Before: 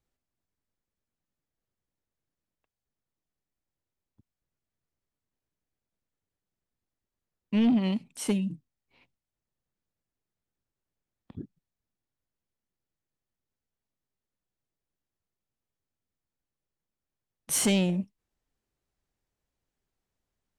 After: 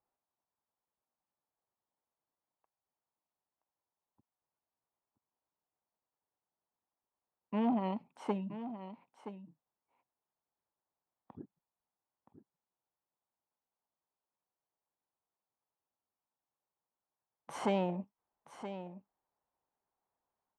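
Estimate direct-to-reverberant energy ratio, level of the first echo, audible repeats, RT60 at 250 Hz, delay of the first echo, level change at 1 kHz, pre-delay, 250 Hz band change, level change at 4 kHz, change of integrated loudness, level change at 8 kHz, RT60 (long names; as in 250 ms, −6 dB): no reverb audible, −11.5 dB, 1, no reverb audible, 973 ms, +5.0 dB, no reverb audible, −9.5 dB, −16.0 dB, −10.0 dB, below −25 dB, no reverb audible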